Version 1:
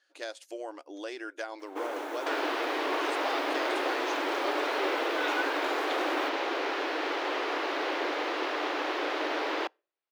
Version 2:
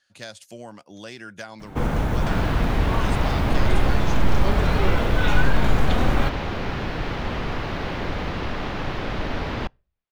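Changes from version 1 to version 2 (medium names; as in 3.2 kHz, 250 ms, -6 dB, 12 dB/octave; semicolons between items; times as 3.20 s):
speech: add tilt EQ +2 dB/octave; first sound +6.5 dB; master: remove brick-wall FIR high-pass 280 Hz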